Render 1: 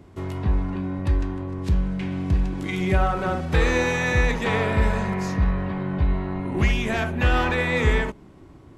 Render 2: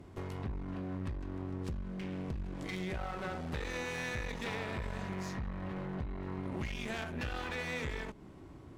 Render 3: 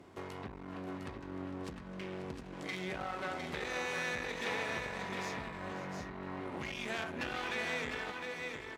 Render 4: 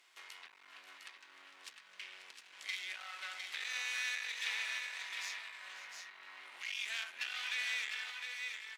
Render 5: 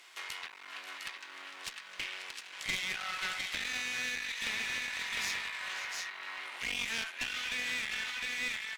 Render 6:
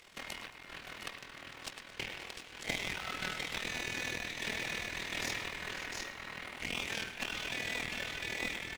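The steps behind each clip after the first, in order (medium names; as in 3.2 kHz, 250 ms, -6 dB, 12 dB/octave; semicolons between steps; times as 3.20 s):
dynamic bell 4.5 kHz, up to +4 dB, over -41 dBFS, Q 0.92; compression 5:1, threshold -29 dBFS, peak gain reduction 14 dB; one-sided clip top -42 dBFS; trim -4 dB
high-pass 430 Hz 6 dB/octave; treble shelf 8.8 kHz -5 dB; on a send: multi-tap echo 537/707/715/725 ms -14.5/-6/-17/-18 dB; on the sum: trim +2.5 dB
Chebyshev high-pass 2.6 kHz, order 2; trim +4 dB
gain riding within 4 dB 0.5 s; one-sided clip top -40.5 dBFS; trim +7 dB
in parallel at -6.5 dB: decimation with a swept rate 26×, swing 60% 1.6 Hz; on the sum: AM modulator 40 Hz, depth 60%; feedback delay 111 ms, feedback 58%, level -14 dB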